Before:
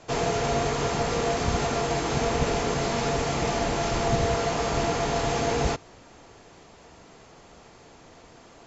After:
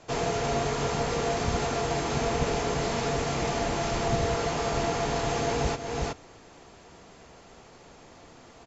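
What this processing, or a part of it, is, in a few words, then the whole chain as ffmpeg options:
ducked delay: -filter_complex "[0:a]asplit=3[a][b][c];[b]adelay=369,volume=-2.5dB[d];[c]apad=whole_len=398349[e];[d][e]sidechaincompress=threshold=-30dB:ratio=8:attack=5.5:release=318[f];[a][f]amix=inputs=2:normalize=0,volume=-2.5dB"

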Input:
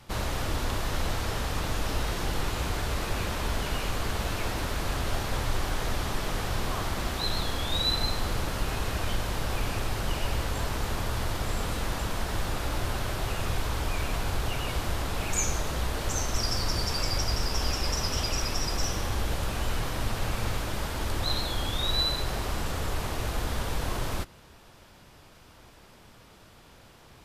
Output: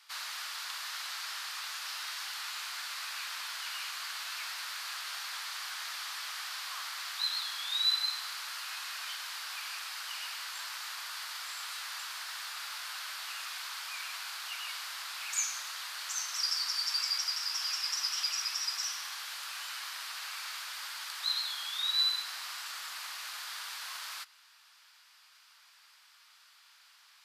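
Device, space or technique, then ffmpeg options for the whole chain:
headphones lying on a table: -af "highpass=f=1.2k:w=0.5412,highpass=f=1.2k:w=1.3066,equalizer=f=4.6k:t=o:w=0.47:g=6,volume=-3.5dB"

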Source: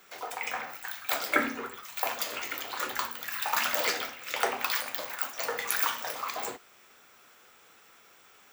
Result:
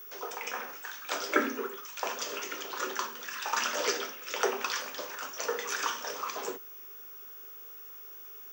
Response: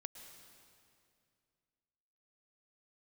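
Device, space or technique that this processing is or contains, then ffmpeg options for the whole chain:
old television with a line whistle: -af "highpass=f=210:w=0.5412,highpass=f=210:w=1.3066,equalizer=f=400:t=q:w=4:g=9,equalizer=f=740:t=q:w=4:g=-7,equalizer=f=2.1k:t=q:w=4:g=-7,equalizer=f=4.1k:t=q:w=4:g=-7,equalizer=f=5.9k:t=q:w=4:g=8,lowpass=f=6.7k:w=0.5412,lowpass=f=6.7k:w=1.3066,aeval=exprs='val(0)+0.00631*sin(2*PI*15625*n/s)':c=same"

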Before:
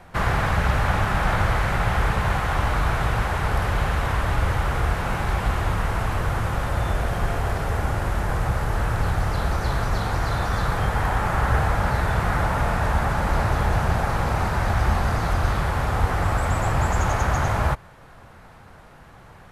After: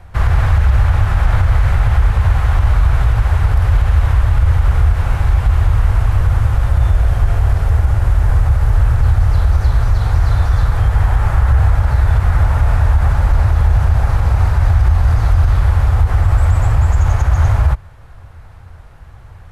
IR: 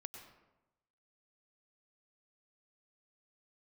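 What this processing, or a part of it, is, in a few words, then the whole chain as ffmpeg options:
car stereo with a boomy subwoofer: -af "lowshelf=f=130:t=q:w=1.5:g=12.5,alimiter=limit=-4dB:level=0:latency=1:release=53"

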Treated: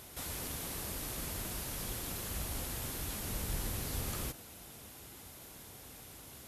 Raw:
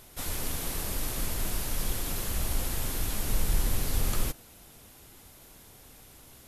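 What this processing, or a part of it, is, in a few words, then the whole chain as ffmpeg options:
de-esser from a sidechain: -filter_complex "[0:a]asplit=2[a][b];[b]highpass=6.2k,apad=whole_len=285712[c];[a][c]sidechaincompress=threshold=-44dB:ratio=3:attack=1.2:release=34,highpass=53,volume=1.5dB"

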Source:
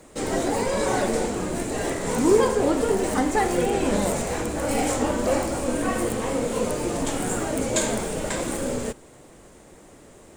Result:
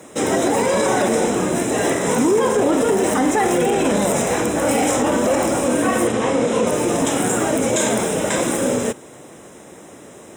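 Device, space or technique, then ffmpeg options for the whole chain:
PA system with an anti-feedback notch: -filter_complex "[0:a]highpass=130,asuperstop=centerf=4500:order=8:qfactor=5.6,alimiter=limit=-17.5dB:level=0:latency=1:release=23,asettb=1/sr,asplit=3[a][b][c];[a]atrim=end=6.074[d];[b]atrim=start=6.07:end=6.67,asetpts=PTS-STARTPTS,afade=t=in:d=0.004:c=qsin,afade=t=out:st=0.596:d=0.004:c=qsin,lowpass=7k[e];[c]atrim=start=6.666[f];[d][e]acrossfade=d=0.004:c1=hsin:c2=qsin[g];[g][f]acrossfade=d=0.004:c1=qsin:c2=hsin,volume=8.5dB"

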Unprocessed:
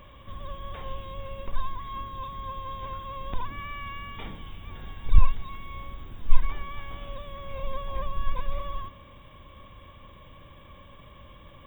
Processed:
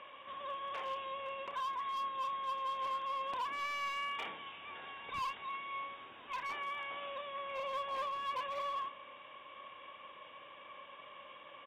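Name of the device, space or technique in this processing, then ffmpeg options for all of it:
megaphone: -filter_complex "[0:a]highpass=590,lowpass=2.7k,equalizer=f=2.7k:t=o:w=0.4:g=6,asoftclip=type=hard:threshold=-36dB,asplit=2[a][b];[b]adelay=30,volume=-12.5dB[c];[a][c]amix=inputs=2:normalize=0,volume=1.5dB"

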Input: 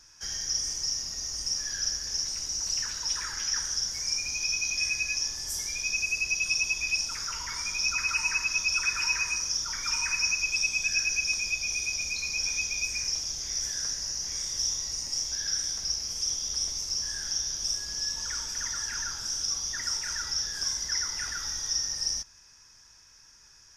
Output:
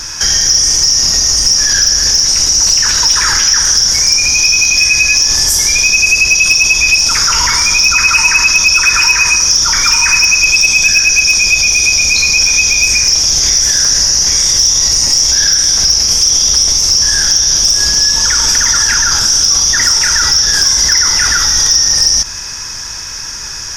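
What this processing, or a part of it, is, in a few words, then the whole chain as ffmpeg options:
loud club master: -af "acompressor=threshold=-31dB:ratio=2.5,asoftclip=type=hard:threshold=-25dB,alimiter=level_in=33.5dB:limit=-1dB:release=50:level=0:latency=1,volume=-1dB"

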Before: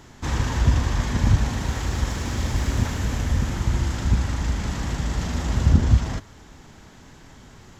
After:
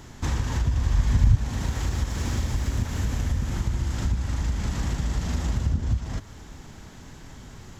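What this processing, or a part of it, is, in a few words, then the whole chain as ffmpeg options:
ASMR close-microphone chain: -filter_complex "[0:a]lowshelf=f=180:g=5.5,acompressor=threshold=-23dB:ratio=4,highshelf=f=6.1k:g=4.5,asettb=1/sr,asplit=3[a][b][c];[a]atrim=end=0.614[d];[b]atrim=start=0.61:end=1.35,asetpts=PTS-STARTPTS,afade=t=in:d=0.004:c=qsin,afade=t=out:st=0.736:d=0.004:c=qsin,asubboost=boost=8.5:cutoff=170[e];[c]atrim=start=1.346[f];[d][e]acrossfade=d=0.004:c1=hsin:c2=qsin[g];[g][f]acrossfade=d=0.004:c1=qsin:c2=hsin"

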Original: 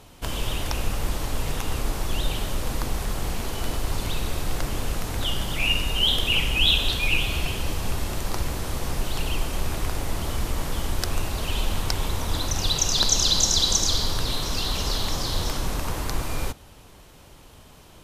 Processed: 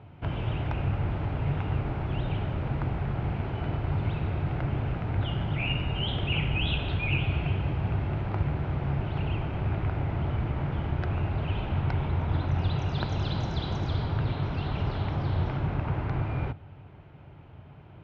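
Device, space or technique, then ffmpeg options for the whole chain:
bass cabinet: -af "highpass=66,equalizer=f=96:t=q:w=4:g=9,equalizer=f=140:t=q:w=4:g=9,equalizer=f=240:t=q:w=4:g=-3,equalizer=f=500:t=q:w=4:g=-6,equalizer=f=1.1k:t=q:w=4:g=-7,equalizer=f=1.8k:t=q:w=4:g=-6,lowpass=f=2.2k:w=0.5412,lowpass=f=2.2k:w=1.3066"

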